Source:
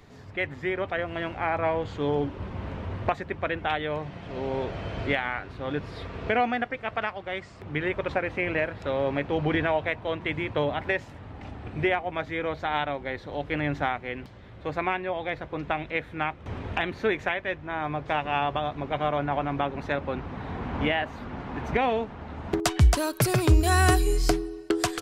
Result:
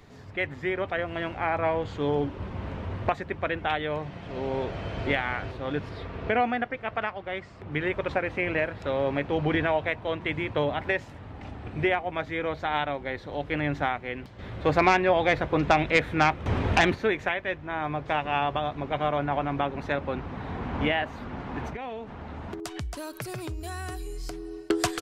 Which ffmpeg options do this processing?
-filter_complex "[0:a]asplit=2[s0][s1];[s1]afade=t=in:st=4.61:d=0.01,afade=t=out:st=5.06:d=0.01,aecho=0:1:450|900|1350|1800|2250:0.595662|0.238265|0.0953059|0.0381224|0.015249[s2];[s0][s2]amix=inputs=2:normalize=0,asettb=1/sr,asplit=3[s3][s4][s5];[s3]atrim=end=5.894[s6];[s4]atrim=start=5.89:end=7.72,asetpts=PTS-STARTPTS,afade=t=in:d=0.004:c=qsin,afade=t=out:st=1.826:d=0.004:c=qsin,highshelf=f=5800:g=-11[s7];[s5]atrim=start=7.716[s8];[s6][s7]acrossfade=d=0.004:c1=hsin:c2=qsin[s9];[s9][s8]acrossfade=d=0.004:c1=qsin:c2=hsin,asplit=3[s10][s11][s12];[s10]afade=t=out:st=14.38:d=0.02[s13];[s11]aeval=exprs='0.282*sin(PI/2*1.78*val(0)/0.282)':c=same,afade=t=in:st=14.38:d=0.02,afade=t=out:st=16.94:d=0.02[s14];[s12]afade=t=in:st=16.94:d=0.02[s15];[s13][s14][s15]amix=inputs=3:normalize=0,asettb=1/sr,asplit=3[s16][s17][s18];[s16]atrim=end=21.684[s19];[s17]atrim=start=21.68:end=24.69,asetpts=PTS-STARTPTS,afade=t=in:d=0.004:c=qsin,afade=t=out:st=3.006:d=0.004:c=qsin,acompressor=threshold=0.0224:ratio=6:attack=3.2:release=140:knee=1:detection=peak[s20];[s18]atrim=start=24.686[s21];[s19][s20]acrossfade=d=0.004:c1=hsin:c2=qsin[s22];[s22][s21]acrossfade=d=0.004:c1=qsin:c2=hsin"

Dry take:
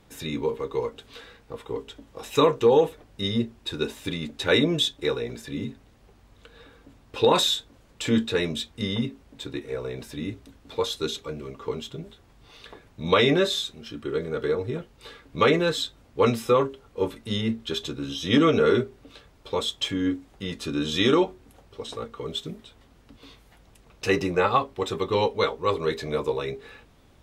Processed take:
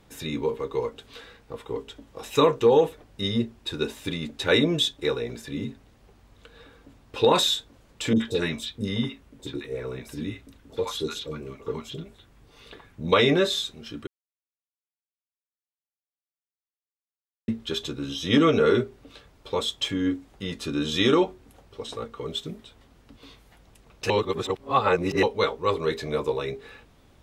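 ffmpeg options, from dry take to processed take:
-filter_complex "[0:a]asettb=1/sr,asplit=3[s0][s1][s2];[s0]atrim=end=8.134[s3];[s1]atrim=start=8.13:end=13.12,asetpts=PTS-STARTPTS,afade=t=in:d=0.004:c=qsin,afade=t=out:st=4.986:d=0.004:c=qsin,acrossover=split=740|4700[s4][s5][s6];[s6]adelay=30[s7];[s5]adelay=70[s8];[s4][s8][s7]amix=inputs=3:normalize=0,atrim=end_sample=220059[s9];[s2]atrim=start=13.116[s10];[s3][s9]acrossfade=d=0.004:c1=hsin:c2=qsin[s11];[s11][s10]acrossfade=d=0.004:c1=qsin:c2=hsin,asplit=5[s12][s13][s14][s15][s16];[s12]atrim=end=14.07,asetpts=PTS-STARTPTS,afade=t=out:st=14.066:d=0.004:c=hsin[s17];[s13]atrim=start=14.07:end=17.48,asetpts=PTS-STARTPTS,volume=0[s18];[s14]atrim=start=17.48:end=24.102,asetpts=PTS-STARTPTS,afade=t=in:d=0.004:c=hsin[s19];[s15]atrim=start=24.098:end=25.232,asetpts=PTS-STARTPTS,areverse[s20];[s16]atrim=start=25.228[s21];[s17][s18][s19]concat=n=3:v=0:a=1[s22];[s22][s20]acrossfade=d=0.004:c1=hsin:c2=hsin[s23];[s23][s21]acrossfade=d=0.004:c1=hsin:c2=hsin"

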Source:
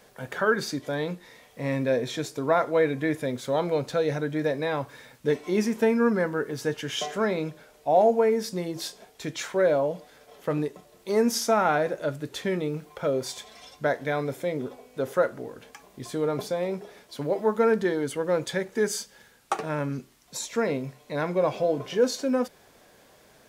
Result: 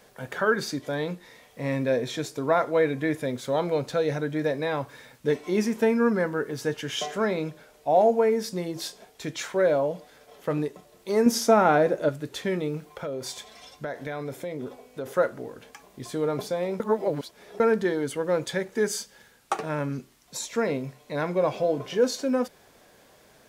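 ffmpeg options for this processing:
-filter_complex "[0:a]asettb=1/sr,asplit=3[s0][s1][s2];[s0]atrim=end=11.264[s3];[s1]atrim=start=11.26:end=12.09,asetpts=PTS-STARTPTS,afade=t=in:d=0.004:c=qsin,afade=t=out:st=0.826:d=0.004:c=qsin,equalizer=f=300:t=o:w=2.6:g=6.5[s4];[s2]atrim=start=12.086[s5];[s3][s4]acrossfade=d=0.004:c1=hsin:c2=qsin[s6];[s6][s5]acrossfade=d=0.004:c1=qsin:c2=hsin,asettb=1/sr,asplit=3[s7][s8][s9];[s7]atrim=end=12.904[s10];[s8]atrim=start=12.9:end=15.06,asetpts=PTS-STARTPTS,afade=t=in:d=0.004:c=qsin,afade=t=out:st=2.156:d=0.004:c=qsin,acompressor=threshold=0.0355:ratio=5:attack=3.2:release=140:knee=1:detection=peak[s11];[s9]atrim=start=15.056[s12];[s10][s11]acrossfade=d=0.004:c1=hsin:c2=qsin[s13];[s13][s12]acrossfade=d=0.004:c1=qsin:c2=hsin,asplit=3[s14][s15][s16];[s14]atrim=end=16.802[s17];[s15]atrim=start=16.798:end=17.602,asetpts=PTS-STARTPTS,areverse[s18];[s16]atrim=start=17.598[s19];[s17][s18]acrossfade=d=0.004:c1=hsin:c2=hsin[s20];[s20][s19]acrossfade=d=0.004:c1=hsin:c2=hsin"

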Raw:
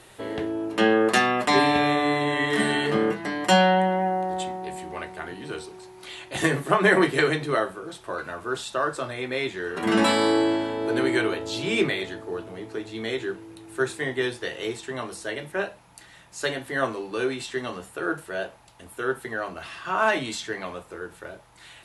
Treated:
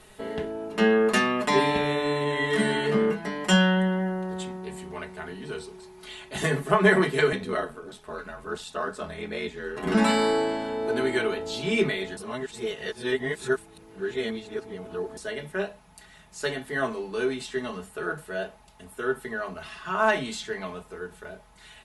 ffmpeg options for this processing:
-filter_complex "[0:a]asettb=1/sr,asplit=3[s0][s1][s2];[s0]atrim=end=7.324[s3];[s1]atrim=start=7.32:end=9.95,asetpts=PTS-STARTPTS,afade=t=in:d=0.004:c=qsin,afade=t=out:st=2.626:d=0.004:c=qsin,aeval=exprs='val(0)*sin(2*PI*42*n/s)':c=same[s4];[s2]atrim=start=9.946[s5];[s3][s4]acrossfade=d=0.004:c1=hsin:c2=qsin[s6];[s6][s5]acrossfade=d=0.004:c1=qsin:c2=hsin,asplit=3[s7][s8][s9];[s7]atrim=end=12.172[s10];[s8]atrim=start=12.168:end=15.172,asetpts=PTS-STARTPTS,areverse[s11];[s9]atrim=start=15.168[s12];[s10][s11]acrossfade=d=0.004:c1=hsin:c2=hsin[s13];[s13][s12]acrossfade=d=0.004:c1=hsin:c2=hsin,lowshelf=f=140:g=10,aecho=1:1:4.7:0.74,volume=0.596"

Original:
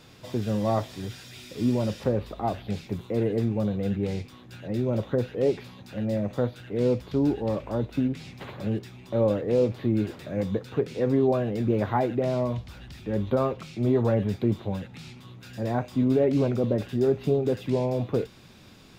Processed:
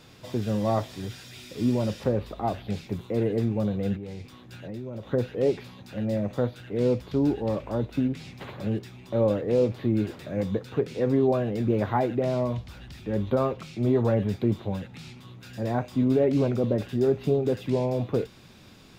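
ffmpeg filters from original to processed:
-filter_complex "[0:a]asettb=1/sr,asplit=3[s0][s1][s2];[s0]atrim=end=3.964[s3];[s1]atrim=start=3.96:end=5.1,asetpts=PTS-STARTPTS,afade=t=in:d=0.004:c=qsin,afade=t=out:st=1.136:d=0.004:c=qsin,acompressor=threshold=0.02:ratio=4:attack=3.2:release=140:knee=1:detection=peak[s4];[s2]atrim=start=5.096[s5];[s3][s4]acrossfade=d=0.004:c1=hsin:c2=qsin[s6];[s6][s5]acrossfade=d=0.004:c1=qsin:c2=hsin"

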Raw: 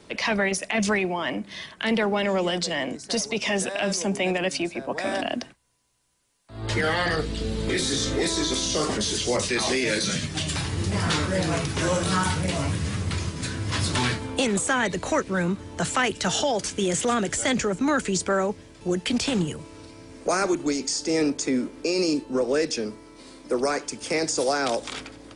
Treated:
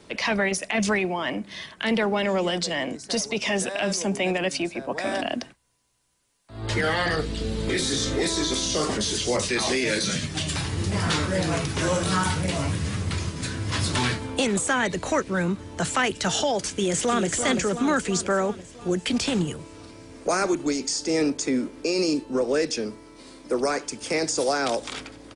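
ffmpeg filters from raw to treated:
-filter_complex "[0:a]asplit=2[s0][s1];[s1]afade=t=in:st=16.6:d=0.01,afade=t=out:st=17.25:d=0.01,aecho=0:1:340|680|1020|1360|1700|2040|2380|2720|3060:0.421697|0.274103|0.178167|0.115808|0.0752755|0.048929|0.0318039|0.0206725|0.0134371[s2];[s0][s2]amix=inputs=2:normalize=0"

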